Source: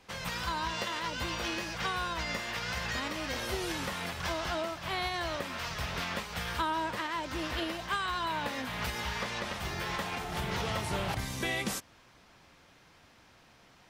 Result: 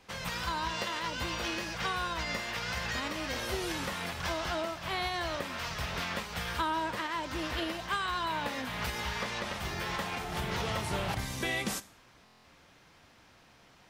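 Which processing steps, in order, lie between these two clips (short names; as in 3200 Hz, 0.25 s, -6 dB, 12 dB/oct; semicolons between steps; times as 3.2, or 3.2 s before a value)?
Schroeder reverb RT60 0.47 s, combs from 28 ms, DRR 16.5 dB; stuck buffer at 12.24, samples 1024, times 8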